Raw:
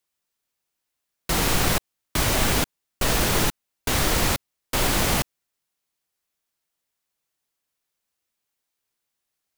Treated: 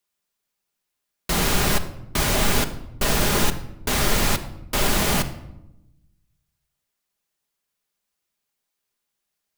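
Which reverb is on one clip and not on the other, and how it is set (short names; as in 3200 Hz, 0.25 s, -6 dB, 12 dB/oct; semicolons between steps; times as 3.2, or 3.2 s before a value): shoebox room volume 3100 m³, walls furnished, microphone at 1.3 m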